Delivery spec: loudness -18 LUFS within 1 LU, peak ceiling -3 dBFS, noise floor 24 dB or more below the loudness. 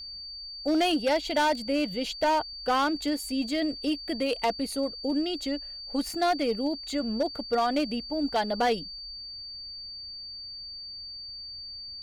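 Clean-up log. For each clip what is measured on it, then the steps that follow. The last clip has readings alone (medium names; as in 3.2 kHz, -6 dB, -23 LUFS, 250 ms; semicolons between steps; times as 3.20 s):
clipped samples 1.4%; clipping level -19.5 dBFS; steady tone 4.6 kHz; tone level -38 dBFS; loudness -29.0 LUFS; peak level -19.5 dBFS; loudness target -18.0 LUFS
-> clip repair -19.5 dBFS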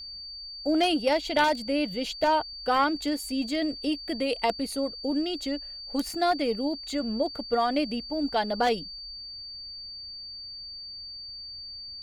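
clipped samples 0.0%; steady tone 4.6 kHz; tone level -38 dBFS
-> band-stop 4.6 kHz, Q 30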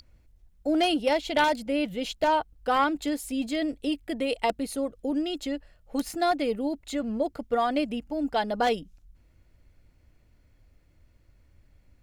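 steady tone not found; loudness -28.0 LUFS; peak level -10.5 dBFS; loudness target -18.0 LUFS
-> trim +10 dB; peak limiter -3 dBFS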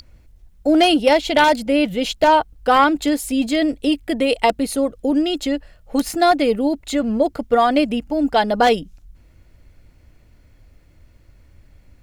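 loudness -18.0 LUFS; peak level -3.0 dBFS; noise floor -52 dBFS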